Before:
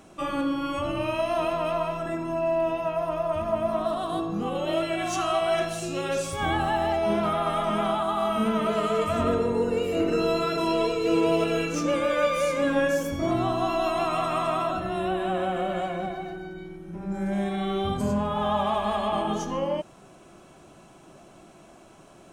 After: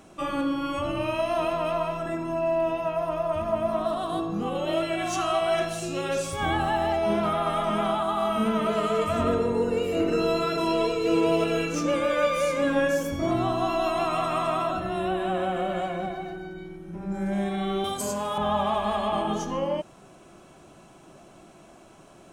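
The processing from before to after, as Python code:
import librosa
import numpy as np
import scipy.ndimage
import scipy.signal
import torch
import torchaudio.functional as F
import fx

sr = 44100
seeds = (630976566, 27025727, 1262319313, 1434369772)

y = fx.bass_treble(x, sr, bass_db=-14, treble_db=14, at=(17.84, 18.38))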